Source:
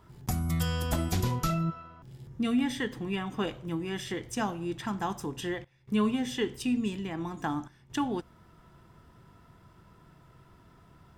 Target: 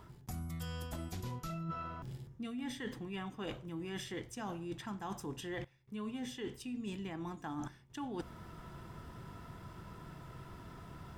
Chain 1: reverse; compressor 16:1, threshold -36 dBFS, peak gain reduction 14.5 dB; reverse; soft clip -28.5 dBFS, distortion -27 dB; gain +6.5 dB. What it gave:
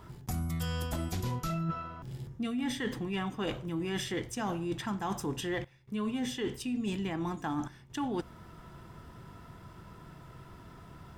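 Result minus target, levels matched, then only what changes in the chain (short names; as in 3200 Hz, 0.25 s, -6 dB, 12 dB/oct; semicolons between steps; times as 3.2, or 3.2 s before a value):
compressor: peak gain reduction -8.5 dB
change: compressor 16:1, threshold -45 dBFS, peak gain reduction 23 dB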